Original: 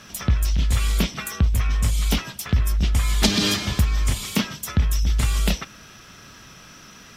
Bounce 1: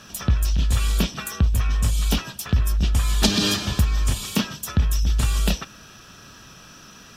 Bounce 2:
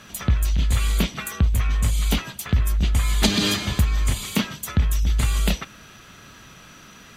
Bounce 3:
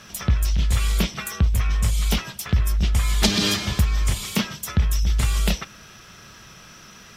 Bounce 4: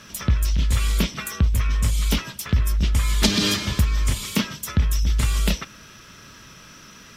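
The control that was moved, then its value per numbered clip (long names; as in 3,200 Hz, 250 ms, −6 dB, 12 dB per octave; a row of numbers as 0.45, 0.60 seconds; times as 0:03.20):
notch filter, centre frequency: 2,100, 5,400, 270, 750 Hertz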